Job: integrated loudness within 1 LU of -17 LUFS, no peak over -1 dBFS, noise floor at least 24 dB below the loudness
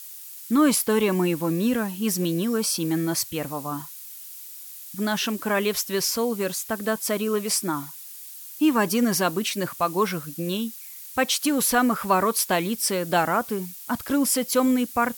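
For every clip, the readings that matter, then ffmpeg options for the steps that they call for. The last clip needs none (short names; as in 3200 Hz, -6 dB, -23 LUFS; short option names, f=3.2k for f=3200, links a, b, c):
noise floor -41 dBFS; noise floor target -48 dBFS; loudness -24.0 LUFS; peak -8.5 dBFS; loudness target -17.0 LUFS
-> -af "afftdn=nr=7:nf=-41"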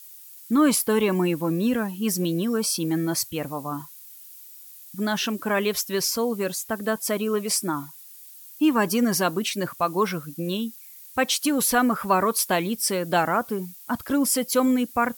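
noise floor -45 dBFS; noise floor target -48 dBFS
-> -af "afftdn=nr=6:nf=-45"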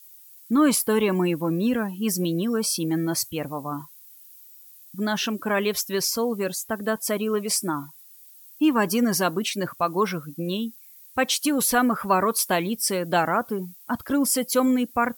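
noise floor -49 dBFS; loudness -24.0 LUFS; peak -9.0 dBFS; loudness target -17.0 LUFS
-> -af "volume=7dB"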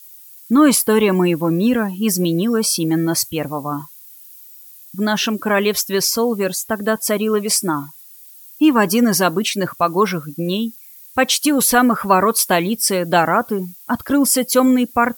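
loudness -17.0 LUFS; peak -2.0 dBFS; noise floor -42 dBFS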